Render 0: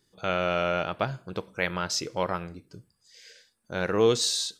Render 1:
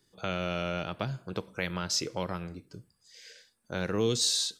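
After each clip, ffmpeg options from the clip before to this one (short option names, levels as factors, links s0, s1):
-filter_complex "[0:a]acrossover=split=320|3000[s0][s1][s2];[s1]acompressor=threshold=0.0224:ratio=6[s3];[s0][s3][s2]amix=inputs=3:normalize=0"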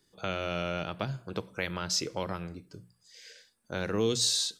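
-af "bandreject=f=60:t=h:w=6,bandreject=f=120:t=h:w=6,bandreject=f=180:t=h:w=6"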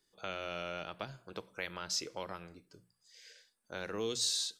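-af "equalizer=f=110:w=0.44:g=-9.5,volume=0.531"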